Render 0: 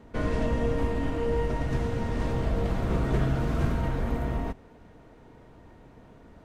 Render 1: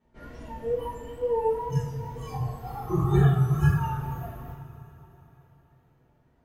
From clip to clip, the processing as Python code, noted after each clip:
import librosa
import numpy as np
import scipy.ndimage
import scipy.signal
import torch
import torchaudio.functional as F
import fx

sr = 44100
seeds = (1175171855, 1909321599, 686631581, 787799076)

y = fx.noise_reduce_blind(x, sr, reduce_db=25)
y = fx.wow_flutter(y, sr, seeds[0], rate_hz=2.1, depth_cents=87.0)
y = fx.rev_double_slope(y, sr, seeds[1], early_s=0.47, late_s=3.8, knee_db=-18, drr_db=-10.0)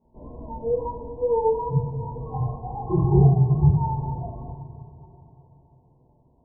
y = fx.brickwall_lowpass(x, sr, high_hz=1100.0)
y = y * librosa.db_to_amplitude(4.0)